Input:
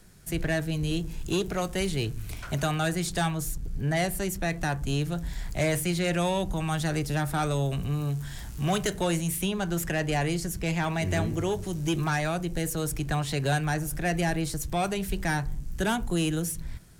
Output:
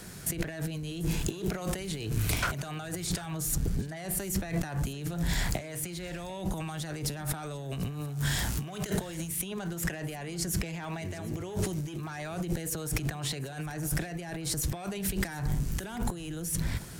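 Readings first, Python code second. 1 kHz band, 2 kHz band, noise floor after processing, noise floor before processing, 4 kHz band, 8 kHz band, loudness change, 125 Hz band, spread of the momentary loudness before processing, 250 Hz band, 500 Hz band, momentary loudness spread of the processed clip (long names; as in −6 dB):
−9.5 dB, −6.5 dB, −40 dBFS, −38 dBFS, −4.0 dB, 0.0 dB, −4.5 dB, −4.0 dB, 5 LU, −5.5 dB, −8.5 dB, 6 LU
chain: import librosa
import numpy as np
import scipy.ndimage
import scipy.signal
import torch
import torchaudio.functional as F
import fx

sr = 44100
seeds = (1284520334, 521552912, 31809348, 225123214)

y = fx.highpass(x, sr, hz=110.0, slope=6)
y = fx.over_compress(y, sr, threshold_db=-39.0, ratio=-1.0)
y = y + 10.0 ** (-19.5 / 20.0) * np.pad(y, (int(742 * sr / 1000.0), 0))[:len(y)]
y = F.gain(torch.from_numpy(y), 4.5).numpy()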